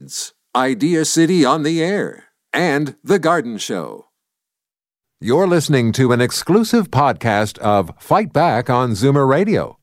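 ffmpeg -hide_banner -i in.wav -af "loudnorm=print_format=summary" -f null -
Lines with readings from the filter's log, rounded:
Input Integrated:    -16.3 LUFS
Input True Peak:      -2.0 dBTP
Input LRA:             3.0 LU
Input Threshold:     -26.5 LUFS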